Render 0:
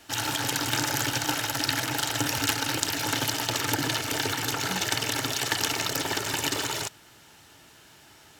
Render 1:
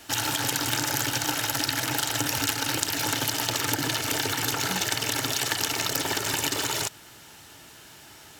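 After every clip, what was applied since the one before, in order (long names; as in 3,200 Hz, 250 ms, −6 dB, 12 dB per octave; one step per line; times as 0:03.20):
downward compressor 3 to 1, threshold −29 dBFS, peak gain reduction 7.5 dB
high-shelf EQ 7,500 Hz +4.5 dB
level +4 dB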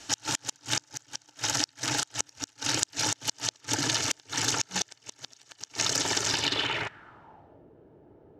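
low-pass filter sweep 6,400 Hz → 470 Hz, 0:06.24–0:07.65
gate with flip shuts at −8 dBFS, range −34 dB
level −2.5 dB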